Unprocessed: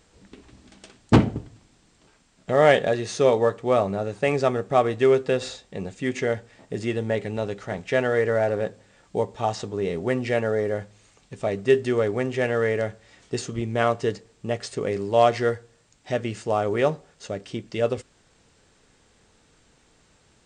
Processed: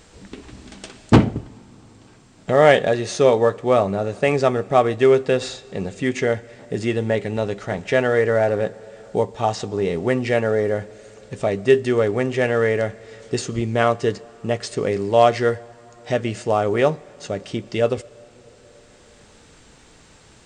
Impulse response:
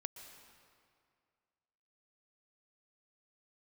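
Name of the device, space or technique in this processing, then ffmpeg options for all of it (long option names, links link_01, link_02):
ducked reverb: -filter_complex "[0:a]asplit=3[link_01][link_02][link_03];[1:a]atrim=start_sample=2205[link_04];[link_02][link_04]afir=irnorm=-1:irlink=0[link_05];[link_03]apad=whole_len=902033[link_06];[link_05][link_06]sidechaincompress=threshold=-37dB:ratio=8:attack=10:release=938,volume=5.5dB[link_07];[link_01][link_07]amix=inputs=2:normalize=0,volume=3dB"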